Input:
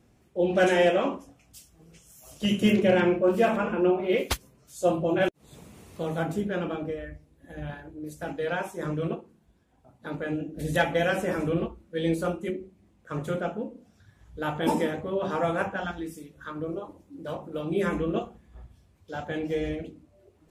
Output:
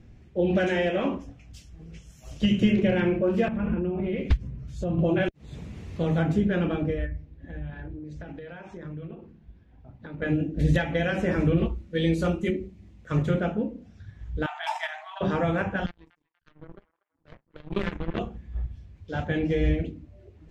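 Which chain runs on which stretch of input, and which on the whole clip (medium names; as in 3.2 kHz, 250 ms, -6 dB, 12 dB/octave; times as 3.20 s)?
3.48–4.99 s: tone controls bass +13 dB, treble -8 dB + compression, threshold -31 dBFS
7.06–10.22 s: compression 12:1, threshold -41 dBFS + distance through air 110 m
11.57–13.23 s: treble shelf 4 kHz +9.5 dB + band-stop 1.6 kHz, Q 20
14.46–15.21 s: gate -25 dBFS, range -16 dB + brick-wall FIR high-pass 630 Hz + level flattener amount 50%
15.86–18.19 s: power-law waveshaper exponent 3 + feedback echo behind a band-pass 240 ms, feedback 34%, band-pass 1.6 kHz, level -18.5 dB
whole clip: high-order bell 3.4 kHz +8.5 dB 2.4 oct; compression 5:1, threshold -24 dBFS; RIAA curve playback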